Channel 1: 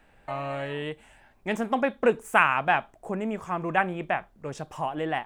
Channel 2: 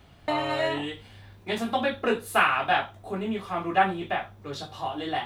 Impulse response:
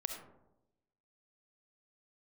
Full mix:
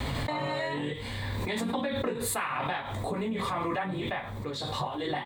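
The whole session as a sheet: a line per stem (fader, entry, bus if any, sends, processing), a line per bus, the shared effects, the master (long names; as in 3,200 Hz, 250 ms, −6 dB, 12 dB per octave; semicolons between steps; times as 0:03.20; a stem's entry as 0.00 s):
0.0 dB, 0.00 s, no send, channel vocoder with a chord as carrier minor triad, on B2; amplitude tremolo 2.3 Hz, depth 90%
−2.0 dB, 2.3 ms, polarity flipped, no send, EQ curve with evenly spaced ripples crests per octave 1, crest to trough 8 dB; background raised ahead of every attack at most 20 dB per second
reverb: not used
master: downward compressor 6 to 1, threshold −28 dBFS, peak gain reduction 13 dB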